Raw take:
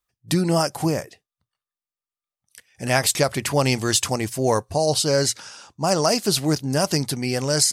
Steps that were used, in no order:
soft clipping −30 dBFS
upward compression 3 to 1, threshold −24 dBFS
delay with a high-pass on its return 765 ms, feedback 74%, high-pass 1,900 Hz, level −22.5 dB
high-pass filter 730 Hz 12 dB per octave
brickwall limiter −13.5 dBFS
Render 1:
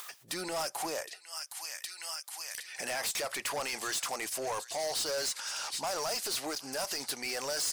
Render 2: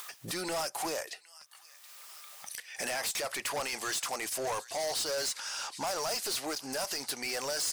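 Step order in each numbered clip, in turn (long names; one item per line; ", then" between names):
delay with a high-pass on its return, then upward compression, then brickwall limiter, then high-pass filter, then soft clipping
high-pass filter, then upward compression, then brickwall limiter, then delay with a high-pass on its return, then soft clipping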